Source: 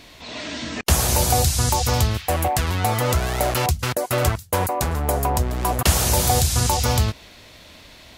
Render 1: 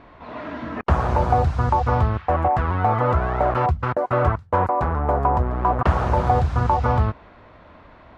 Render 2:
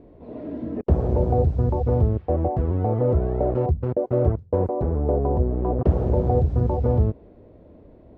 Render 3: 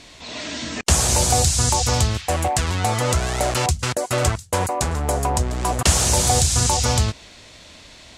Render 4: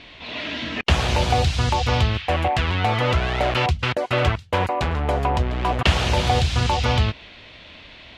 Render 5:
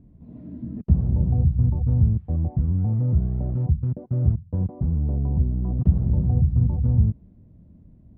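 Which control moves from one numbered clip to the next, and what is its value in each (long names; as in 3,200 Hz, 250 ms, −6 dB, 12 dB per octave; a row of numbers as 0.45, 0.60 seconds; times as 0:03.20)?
low-pass with resonance, frequency: 1,200, 440, 7,900, 3,000, 180 Hertz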